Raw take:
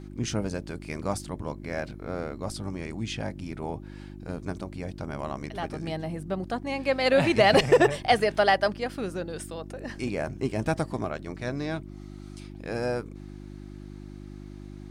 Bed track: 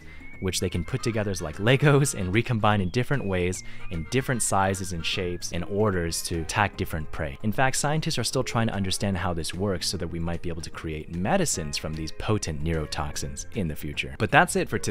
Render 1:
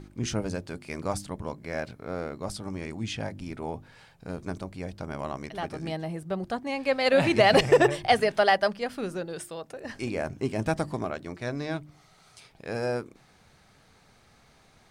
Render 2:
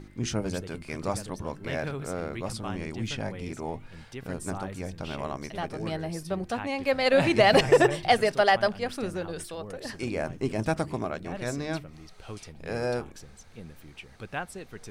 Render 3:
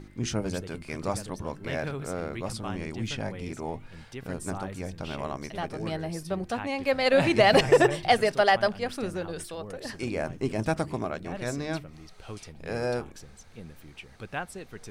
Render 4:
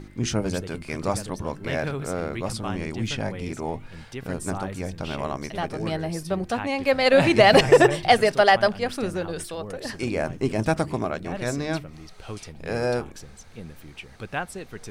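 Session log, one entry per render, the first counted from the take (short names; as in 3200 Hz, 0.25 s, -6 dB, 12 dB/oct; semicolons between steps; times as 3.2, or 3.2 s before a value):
de-hum 50 Hz, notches 7
add bed track -16 dB
nothing audible
gain +4.5 dB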